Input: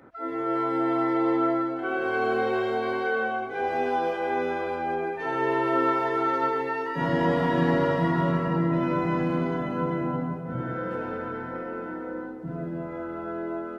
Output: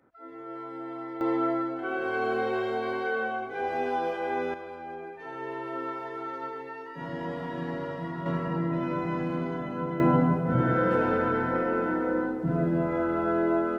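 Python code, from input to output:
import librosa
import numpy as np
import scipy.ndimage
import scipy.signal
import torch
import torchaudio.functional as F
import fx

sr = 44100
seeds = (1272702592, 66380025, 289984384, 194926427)

y = fx.gain(x, sr, db=fx.steps((0.0, -13.0), (1.21, -3.0), (4.54, -11.0), (8.26, -4.5), (10.0, 7.0)))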